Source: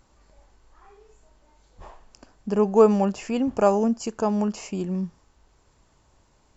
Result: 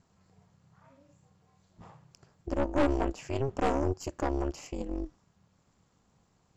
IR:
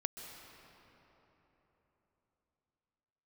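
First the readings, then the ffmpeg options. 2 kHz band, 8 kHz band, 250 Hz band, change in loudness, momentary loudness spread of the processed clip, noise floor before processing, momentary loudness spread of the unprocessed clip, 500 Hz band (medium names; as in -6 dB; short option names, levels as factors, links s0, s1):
-0.5 dB, no reading, -9.5 dB, -9.0 dB, 12 LU, -63 dBFS, 13 LU, -10.5 dB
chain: -af "aeval=exprs='val(0)*sin(2*PI*140*n/s)':c=same,aeval=exprs='(tanh(11.2*val(0)+0.8)-tanh(0.8))/11.2':c=same"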